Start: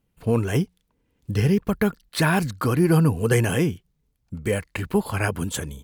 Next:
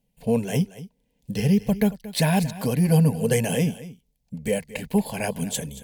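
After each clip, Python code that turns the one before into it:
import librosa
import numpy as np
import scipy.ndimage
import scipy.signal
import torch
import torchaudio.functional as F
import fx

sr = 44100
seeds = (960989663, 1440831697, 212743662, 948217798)

y = fx.fixed_phaser(x, sr, hz=340.0, stages=6)
y = y + 10.0 ** (-16.5 / 20.0) * np.pad(y, (int(228 * sr / 1000.0), 0))[:len(y)]
y = F.gain(torch.from_numpy(y), 2.0).numpy()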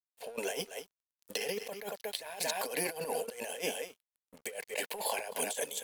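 y = scipy.signal.sosfilt(scipy.signal.butter(4, 450.0, 'highpass', fs=sr, output='sos'), x)
y = fx.over_compress(y, sr, threshold_db=-37.0, ratio=-1.0)
y = np.sign(y) * np.maximum(np.abs(y) - 10.0 ** (-55.0 / 20.0), 0.0)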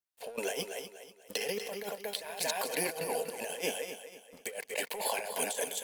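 y = fx.echo_feedback(x, sr, ms=243, feedback_pct=36, wet_db=-10.5)
y = F.gain(torch.from_numpy(y), 1.0).numpy()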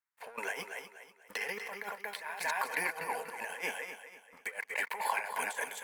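y = fx.band_shelf(x, sr, hz=1400.0, db=15.5, octaves=1.7)
y = F.gain(torch.from_numpy(y), -8.5).numpy()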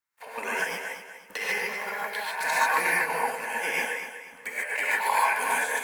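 y = fx.rev_gated(x, sr, seeds[0], gate_ms=170, shape='rising', drr_db=-5.5)
y = F.gain(torch.from_numpy(y), 3.0).numpy()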